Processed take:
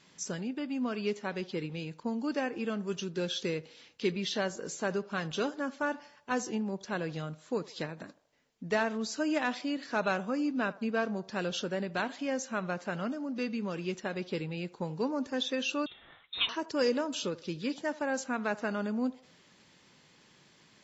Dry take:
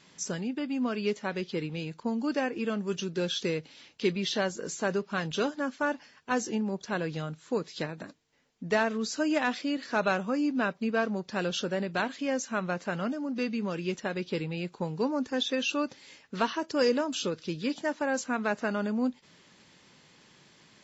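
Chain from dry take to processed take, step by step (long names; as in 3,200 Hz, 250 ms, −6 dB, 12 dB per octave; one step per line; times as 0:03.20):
feedback echo with a band-pass in the loop 78 ms, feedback 53%, band-pass 730 Hz, level −18 dB
0:15.86–0:16.49: voice inversion scrambler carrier 3,900 Hz
level −3 dB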